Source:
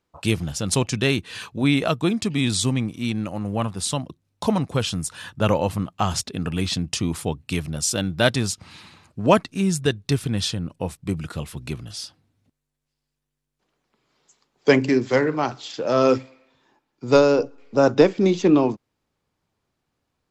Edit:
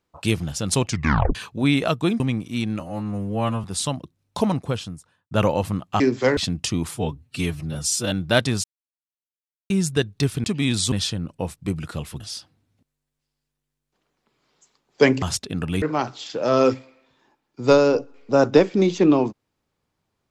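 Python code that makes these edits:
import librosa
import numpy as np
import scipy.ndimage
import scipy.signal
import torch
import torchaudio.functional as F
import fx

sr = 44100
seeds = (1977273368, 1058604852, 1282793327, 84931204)

y = fx.studio_fade_out(x, sr, start_s=4.51, length_s=0.86)
y = fx.edit(y, sr, fx.tape_stop(start_s=0.89, length_s=0.46),
    fx.move(start_s=2.2, length_s=0.48, to_s=10.33),
    fx.stretch_span(start_s=3.28, length_s=0.42, factor=2.0),
    fx.swap(start_s=6.06, length_s=0.6, other_s=14.89, other_length_s=0.37),
    fx.stretch_span(start_s=7.2, length_s=0.8, factor=1.5),
    fx.silence(start_s=8.53, length_s=1.06),
    fx.cut(start_s=11.61, length_s=0.26), tone=tone)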